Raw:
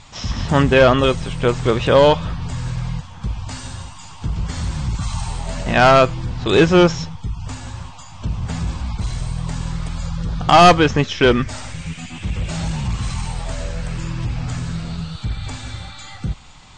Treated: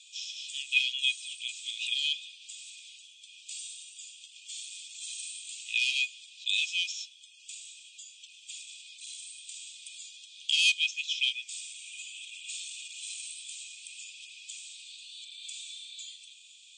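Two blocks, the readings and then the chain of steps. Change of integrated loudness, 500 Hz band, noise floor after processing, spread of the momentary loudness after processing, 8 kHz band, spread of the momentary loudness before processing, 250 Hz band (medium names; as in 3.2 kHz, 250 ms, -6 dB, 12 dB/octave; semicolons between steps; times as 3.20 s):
-13.5 dB, under -40 dB, -55 dBFS, 19 LU, -3.0 dB, 18 LU, under -40 dB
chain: rippled Chebyshev high-pass 2.4 kHz, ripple 9 dB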